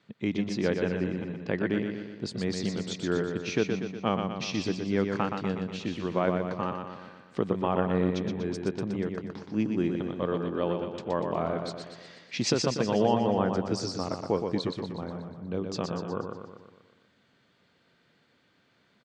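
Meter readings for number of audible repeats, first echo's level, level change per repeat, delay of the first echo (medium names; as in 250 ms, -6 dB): 6, -5.5 dB, -5.0 dB, 121 ms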